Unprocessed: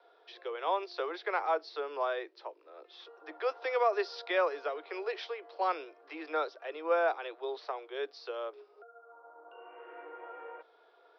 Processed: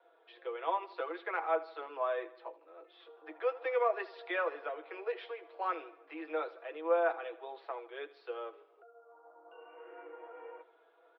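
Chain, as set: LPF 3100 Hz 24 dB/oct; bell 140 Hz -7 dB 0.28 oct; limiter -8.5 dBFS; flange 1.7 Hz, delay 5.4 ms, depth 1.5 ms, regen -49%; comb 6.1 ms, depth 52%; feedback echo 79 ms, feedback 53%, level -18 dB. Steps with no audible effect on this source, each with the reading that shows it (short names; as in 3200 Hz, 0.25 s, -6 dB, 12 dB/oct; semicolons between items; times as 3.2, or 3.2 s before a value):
bell 140 Hz: input band starts at 290 Hz; limiter -8.5 dBFS: input peak -17.5 dBFS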